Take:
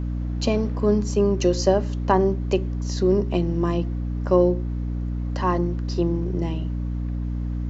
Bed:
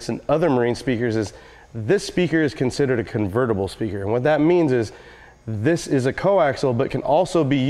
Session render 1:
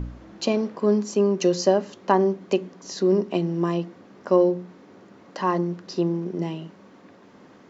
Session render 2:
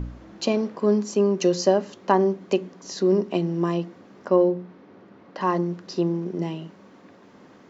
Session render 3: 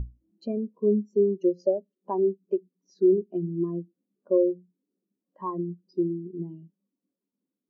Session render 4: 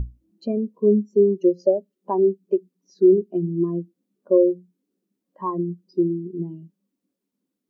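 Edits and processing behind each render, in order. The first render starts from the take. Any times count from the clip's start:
de-hum 60 Hz, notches 5
4.28–5.41 air absorption 160 m
compressor 2:1, threshold -31 dBFS, peak gain reduction 10 dB; spectral expander 2.5:1
gain +5.5 dB

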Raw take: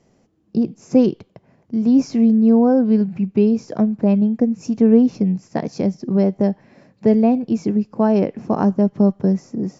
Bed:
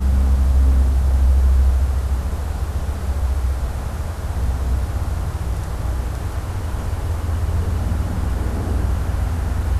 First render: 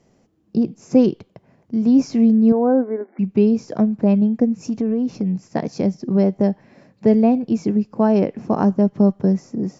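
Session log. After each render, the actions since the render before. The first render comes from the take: 2.52–3.19 brick-wall FIR band-pass 240–2300 Hz; 4.6–5.49 compressor, threshold -17 dBFS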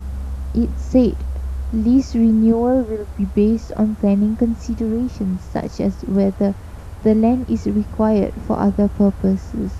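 add bed -10.5 dB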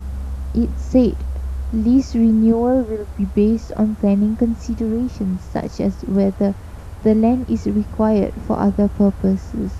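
nothing audible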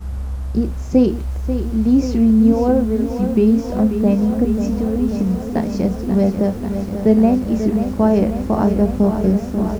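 doubler 32 ms -11.5 dB; lo-fi delay 0.539 s, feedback 80%, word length 7-bit, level -9 dB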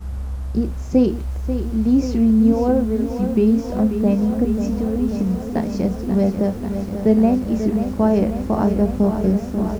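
gain -2 dB

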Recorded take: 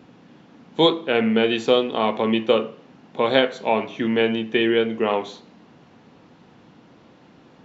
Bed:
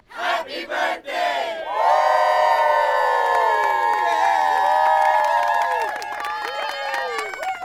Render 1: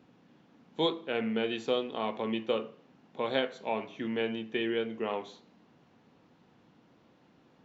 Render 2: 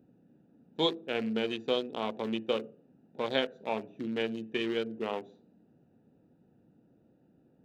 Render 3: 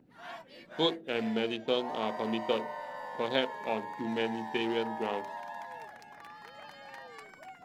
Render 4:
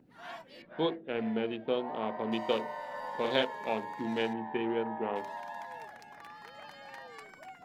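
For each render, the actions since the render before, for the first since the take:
gain -12 dB
Wiener smoothing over 41 samples; high shelf 4000 Hz +8 dB
add bed -23 dB
0.62–2.32 air absorption 410 m; 2.87–3.43 doubler 47 ms -4.5 dB; 4.33–5.16 Gaussian blur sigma 3.5 samples

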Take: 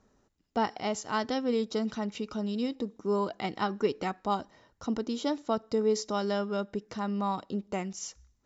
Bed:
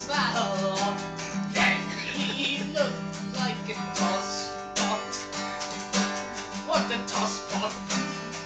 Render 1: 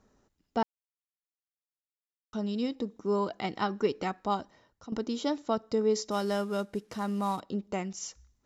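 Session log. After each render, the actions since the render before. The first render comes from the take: 0.63–2.33 mute; 4.18–4.92 fade out equal-power, to -13 dB; 6.11–7.4 CVSD 64 kbps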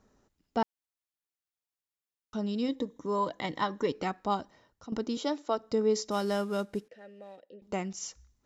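2.68–3.92 ripple EQ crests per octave 1.1, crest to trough 9 dB; 5.17–5.58 HPF 280 Hz 24 dB/oct; 6.88–7.62 vowel filter e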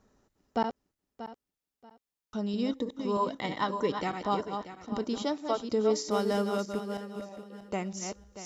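regenerating reverse delay 0.317 s, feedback 47%, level -6.5 dB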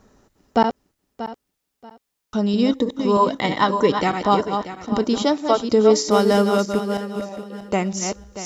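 gain +12 dB

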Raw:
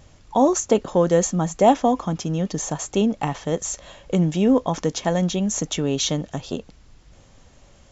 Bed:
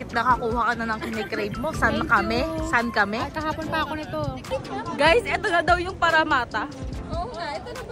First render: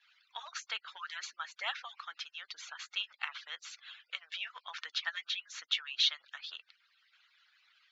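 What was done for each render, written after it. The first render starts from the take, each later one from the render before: median-filter separation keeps percussive; Chebyshev band-pass 1400–4300 Hz, order 3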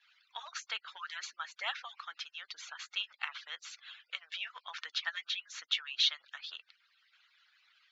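nothing audible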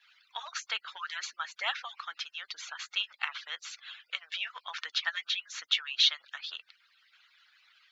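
gain +4.5 dB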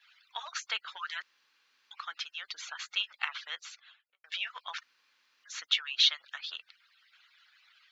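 1.22–1.91 room tone; 3.5–4.24 studio fade out; 4.83–5.44 room tone

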